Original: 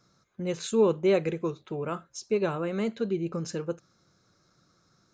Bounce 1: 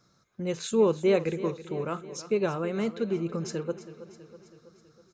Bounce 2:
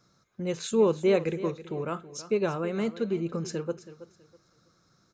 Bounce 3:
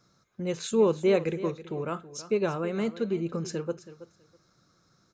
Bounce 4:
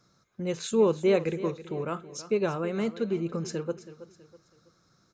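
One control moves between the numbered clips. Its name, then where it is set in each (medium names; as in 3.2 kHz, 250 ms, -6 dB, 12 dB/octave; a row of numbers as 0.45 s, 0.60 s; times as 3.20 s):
feedback delay, feedback: 59%, 25%, 17%, 38%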